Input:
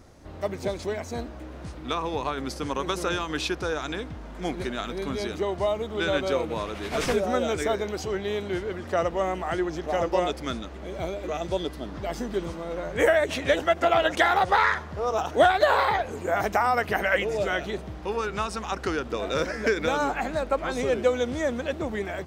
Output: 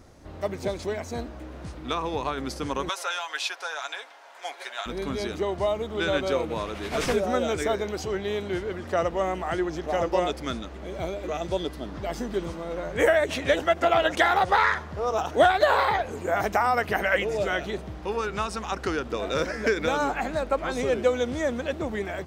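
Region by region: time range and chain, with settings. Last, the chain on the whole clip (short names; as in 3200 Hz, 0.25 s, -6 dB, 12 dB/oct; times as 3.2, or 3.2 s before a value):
2.89–4.86 HPF 670 Hz 24 dB/oct + notch 1200 Hz, Q 13 + comb 7.2 ms, depth 44%
whole clip: dry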